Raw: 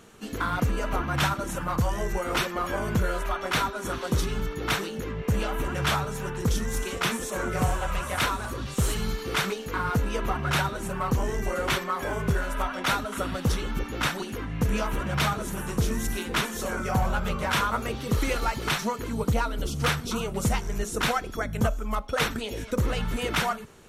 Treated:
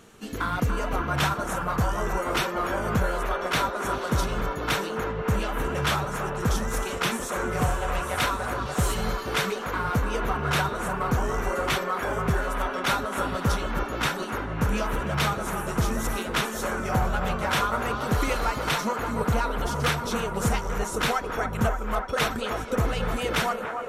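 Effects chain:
delay with a band-pass on its return 289 ms, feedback 84%, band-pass 800 Hz, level −5.5 dB

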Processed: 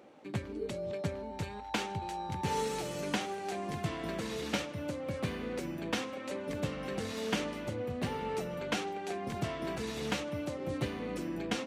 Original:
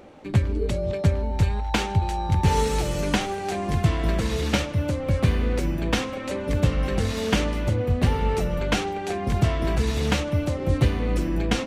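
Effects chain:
high-pass filter 180 Hz 12 dB per octave
level −9 dB

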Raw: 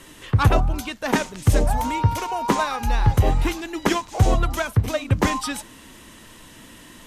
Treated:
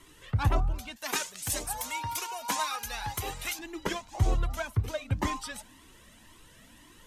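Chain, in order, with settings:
0:00.96–0:03.59: spectral tilt +4 dB per octave
flanger whose copies keep moving one way rising 1.9 Hz
level −6 dB

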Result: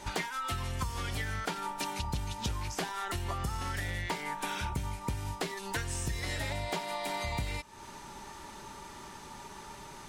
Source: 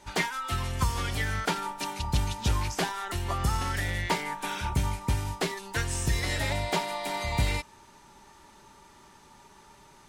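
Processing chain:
downward compressor 5 to 1, threshold −41 dBFS, peak gain reduction 18 dB
level +7.5 dB

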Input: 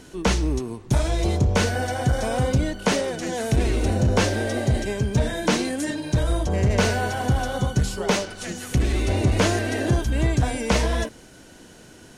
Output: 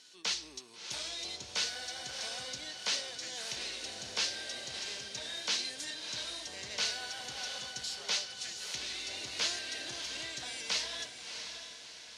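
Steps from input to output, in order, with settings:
resonant band-pass 4,400 Hz, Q 2
feedback delay with all-pass diffusion 660 ms, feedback 47%, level −7.5 dB

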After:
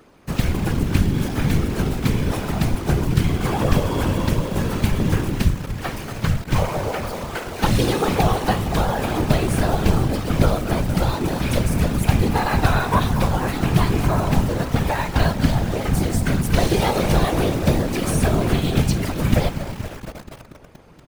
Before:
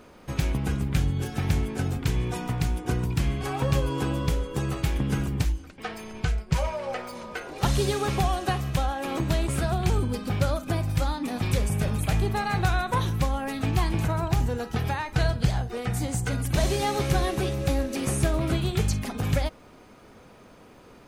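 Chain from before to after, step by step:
dynamic equaliser 7,200 Hz, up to −5 dB, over −54 dBFS, Q 1.8
pitch-shifted copies added −7 semitones −7 dB, +3 semitones −15 dB
delay with a low-pass on its return 237 ms, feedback 67%, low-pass 2,200 Hz, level −10.5 dB
in parallel at +2 dB: bit-depth reduction 6 bits, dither none
on the sum: random phases in short frames
level −2 dB

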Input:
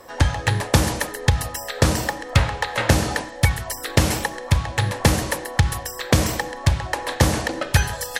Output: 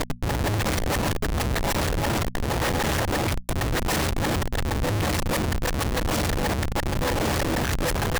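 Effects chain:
reversed piece by piece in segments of 218 ms
comparator with hysteresis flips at −26.5 dBFS
mains-hum notches 60/120/180/240 Hz
level −2 dB

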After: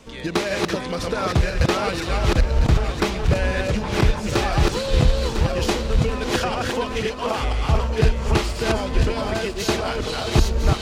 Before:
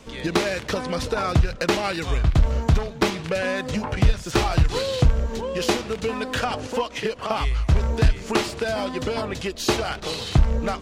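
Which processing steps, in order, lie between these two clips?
feedback delay that plays each chunk backwards 502 ms, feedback 44%, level −1.5 dB
echo machine with several playback heads 293 ms, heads first and second, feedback 59%, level −21 dB
level −1 dB

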